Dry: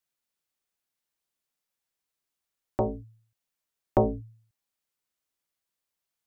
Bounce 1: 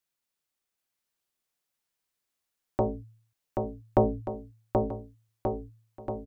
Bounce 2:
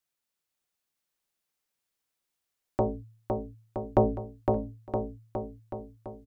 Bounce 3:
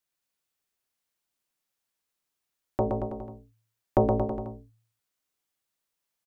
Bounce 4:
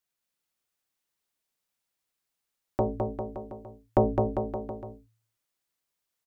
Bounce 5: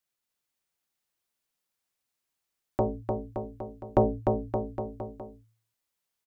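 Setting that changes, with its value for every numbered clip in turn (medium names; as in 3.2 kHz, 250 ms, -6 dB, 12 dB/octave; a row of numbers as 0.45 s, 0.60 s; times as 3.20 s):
bouncing-ball echo, first gap: 780 ms, 510 ms, 120 ms, 210 ms, 300 ms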